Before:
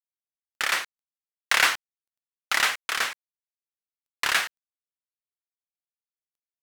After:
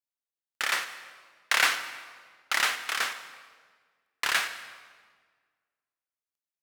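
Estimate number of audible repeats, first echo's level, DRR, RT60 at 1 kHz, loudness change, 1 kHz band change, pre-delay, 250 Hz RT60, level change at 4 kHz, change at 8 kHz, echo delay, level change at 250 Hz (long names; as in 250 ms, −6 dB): no echo audible, no echo audible, 9.5 dB, 1.5 s, −3.0 dB, −2.5 dB, 30 ms, 1.9 s, −2.5 dB, −2.5 dB, no echo audible, −3.5 dB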